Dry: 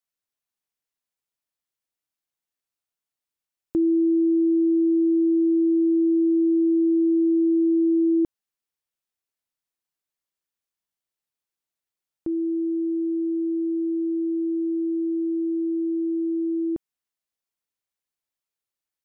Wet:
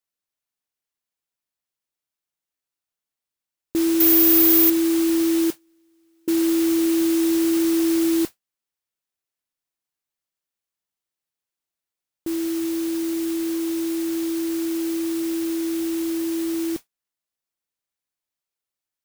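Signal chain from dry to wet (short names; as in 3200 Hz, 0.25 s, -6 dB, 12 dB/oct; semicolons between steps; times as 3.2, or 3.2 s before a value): 5.5–6.28 gate -7 dBFS, range -41 dB; modulation noise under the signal 12 dB; 4–4.7 careless resampling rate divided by 3×, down none, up zero stuff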